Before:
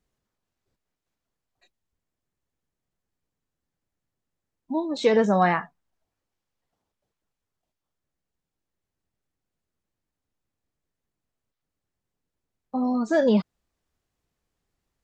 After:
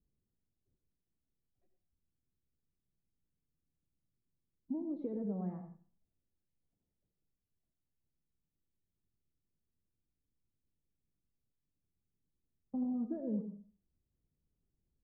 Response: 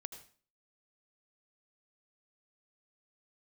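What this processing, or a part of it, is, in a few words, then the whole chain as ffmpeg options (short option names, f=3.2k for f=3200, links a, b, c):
television next door: -filter_complex "[0:a]acompressor=threshold=-29dB:ratio=6,lowpass=280[a];[1:a]atrim=start_sample=2205[b];[a][b]afir=irnorm=-1:irlink=0,volume=2.5dB"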